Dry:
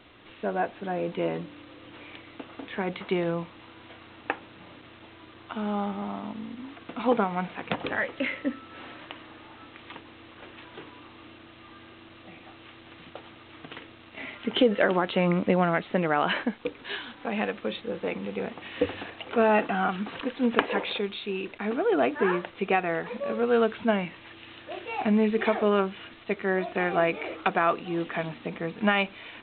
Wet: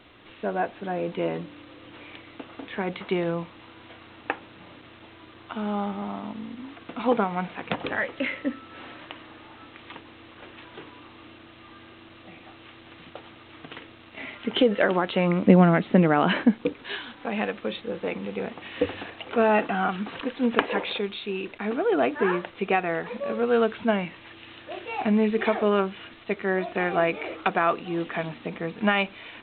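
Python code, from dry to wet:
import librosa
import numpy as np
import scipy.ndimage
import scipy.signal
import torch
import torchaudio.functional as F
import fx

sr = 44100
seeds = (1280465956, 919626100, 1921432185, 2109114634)

y = fx.peak_eq(x, sr, hz=210.0, db=10.0, octaves=1.8, at=(15.43, 16.74))
y = y * 10.0 ** (1.0 / 20.0)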